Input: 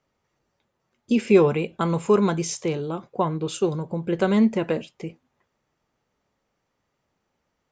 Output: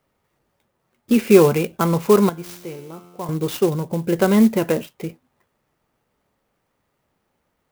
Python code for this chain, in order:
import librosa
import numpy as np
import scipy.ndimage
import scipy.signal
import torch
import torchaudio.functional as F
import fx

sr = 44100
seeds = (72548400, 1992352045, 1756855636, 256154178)

y = fx.comb_fb(x, sr, f0_hz=88.0, decay_s=1.5, harmonics='all', damping=0.0, mix_pct=80, at=(2.29, 3.29))
y = fx.clock_jitter(y, sr, seeds[0], jitter_ms=0.039)
y = F.gain(torch.from_numpy(y), 4.5).numpy()